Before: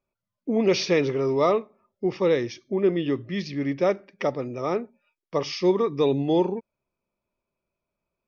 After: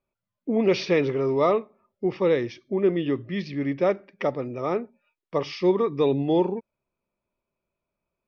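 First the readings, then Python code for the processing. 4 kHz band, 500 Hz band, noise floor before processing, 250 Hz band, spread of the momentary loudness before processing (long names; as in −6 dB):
−3.5 dB, 0.0 dB, below −85 dBFS, 0.0 dB, 8 LU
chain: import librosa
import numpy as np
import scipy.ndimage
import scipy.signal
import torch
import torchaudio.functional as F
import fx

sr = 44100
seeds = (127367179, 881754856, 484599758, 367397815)

y = scipy.signal.sosfilt(scipy.signal.butter(2, 3800.0, 'lowpass', fs=sr, output='sos'), x)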